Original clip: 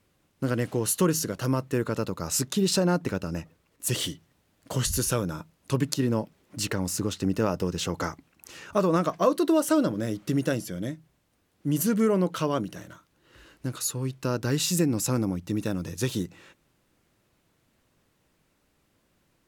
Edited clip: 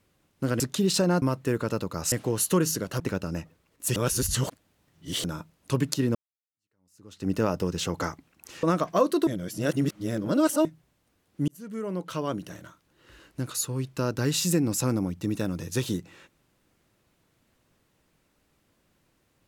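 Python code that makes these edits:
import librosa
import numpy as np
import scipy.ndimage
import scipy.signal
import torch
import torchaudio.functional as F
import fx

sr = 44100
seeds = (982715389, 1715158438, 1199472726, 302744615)

y = fx.edit(x, sr, fx.swap(start_s=0.6, length_s=0.88, other_s=2.38, other_length_s=0.62),
    fx.reverse_span(start_s=3.96, length_s=1.28),
    fx.fade_in_span(start_s=6.15, length_s=1.15, curve='exp'),
    fx.cut(start_s=8.63, length_s=0.26),
    fx.reverse_span(start_s=9.53, length_s=1.38),
    fx.fade_in_span(start_s=11.74, length_s=1.13), tone=tone)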